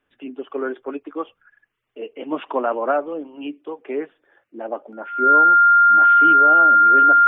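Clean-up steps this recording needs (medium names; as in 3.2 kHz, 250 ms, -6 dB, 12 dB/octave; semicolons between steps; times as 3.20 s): band-stop 1.4 kHz, Q 30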